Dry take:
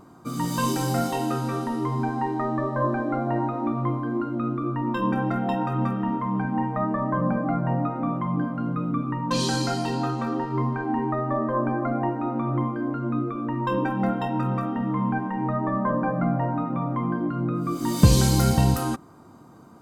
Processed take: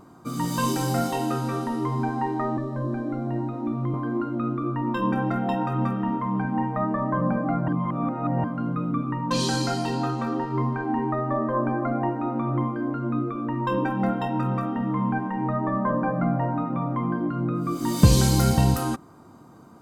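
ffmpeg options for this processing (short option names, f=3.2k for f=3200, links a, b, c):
-filter_complex "[0:a]asettb=1/sr,asplit=3[a][b][c];[a]atrim=end=2.574[d];[b]atrim=start=2.57:end=3.94,asetpts=PTS-STARTPTS,afade=t=in:d=0.004:c=qsin,afade=t=out:st=1.366:d=0.004:c=qsin,acrossover=split=400|3000[e][f][g];[f]acompressor=threshold=-38dB:ratio=6:attack=3.2:release=140:knee=2.83:detection=peak[h];[e][h][g]amix=inputs=3:normalize=0[i];[c]atrim=start=3.936[j];[d][i]acrossfade=d=0.004:c1=hsin:c2=qsin[k];[k][j]acrossfade=d=0.004:c1=qsin:c2=hsin,asplit=3[l][m][n];[l]atrim=end=7.682[o];[m]atrim=start=7.678:end=8.442,asetpts=PTS-STARTPTS,areverse[p];[n]atrim=start=8.438[q];[o][p]acrossfade=d=0.004:c1=hsin:c2=hsin[r];[r][q]acrossfade=d=0.004:c1=hsin:c2=hsin"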